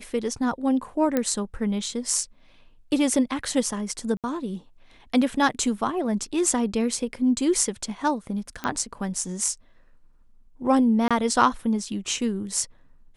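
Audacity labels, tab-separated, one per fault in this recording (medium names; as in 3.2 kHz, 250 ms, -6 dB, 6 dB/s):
1.170000	1.170000	pop -10 dBFS
4.170000	4.240000	dropout 67 ms
8.640000	8.640000	pop -14 dBFS
11.080000	11.110000	dropout 26 ms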